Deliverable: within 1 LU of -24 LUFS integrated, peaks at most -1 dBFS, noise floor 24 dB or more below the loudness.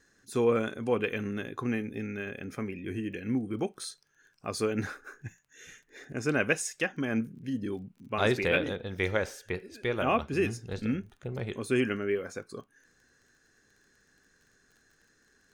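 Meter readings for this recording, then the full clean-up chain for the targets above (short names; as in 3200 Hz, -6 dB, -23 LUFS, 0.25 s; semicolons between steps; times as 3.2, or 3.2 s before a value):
ticks 22/s; loudness -31.5 LUFS; peak -12.0 dBFS; loudness target -24.0 LUFS
-> de-click; gain +7.5 dB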